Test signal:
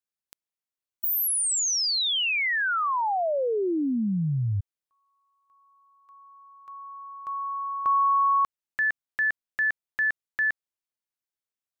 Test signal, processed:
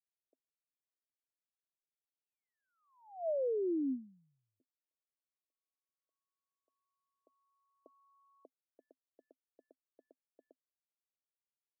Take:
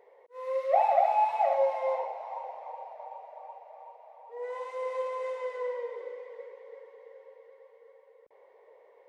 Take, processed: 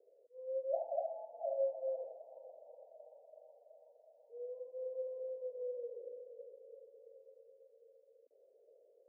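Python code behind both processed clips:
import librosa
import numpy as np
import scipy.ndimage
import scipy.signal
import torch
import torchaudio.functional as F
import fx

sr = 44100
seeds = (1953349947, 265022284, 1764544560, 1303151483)

y = scipy.signal.sosfilt(scipy.signal.cheby1(4, 1.0, [260.0, 650.0], 'bandpass', fs=sr, output='sos'), x)
y = F.gain(torch.from_numpy(y), -7.5).numpy()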